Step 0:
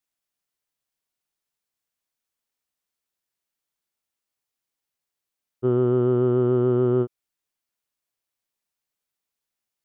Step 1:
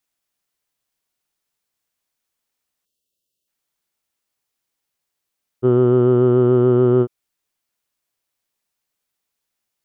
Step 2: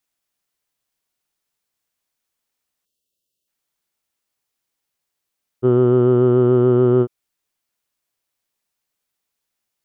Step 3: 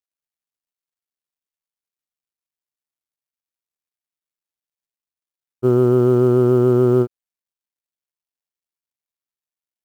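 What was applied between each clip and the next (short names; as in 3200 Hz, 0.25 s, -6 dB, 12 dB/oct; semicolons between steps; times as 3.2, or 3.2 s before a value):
spectral delete 2.85–3.48, 630–2600 Hz; gain +6 dB
nothing audible
G.711 law mismatch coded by A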